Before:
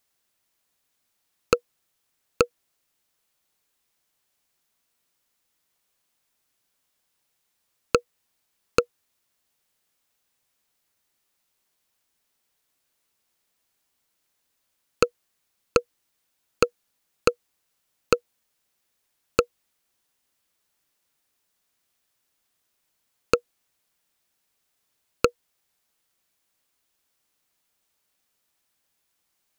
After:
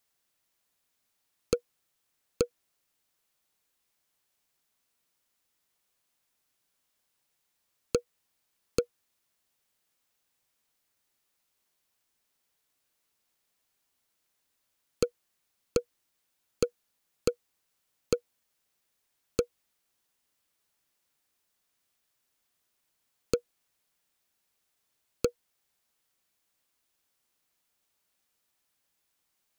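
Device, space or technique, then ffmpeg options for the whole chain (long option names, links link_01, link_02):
one-band saturation: -filter_complex "[0:a]acrossover=split=500|4100[link_01][link_02][link_03];[link_02]asoftclip=type=tanh:threshold=-29.5dB[link_04];[link_01][link_04][link_03]amix=inputs=3:normalize=0,volume=-3dB"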